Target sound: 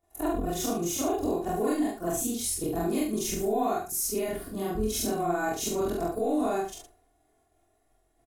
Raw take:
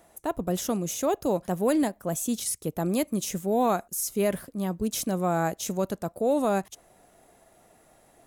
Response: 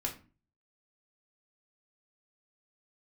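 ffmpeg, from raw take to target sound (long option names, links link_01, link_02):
-af "afftfilt=real='re':imag='-im':win_size=4096:overlap=0.75,agate=range=-33dB:threshold=-50dB:ratio=3:detection=peak,lowshelf=frequency=180:gain=11,aecho=1:1:2.8:0.73,acompressor=threshold=-35dB:ratio=3,aecho=1:1:23|72:0.562|0.355,volume=6dB"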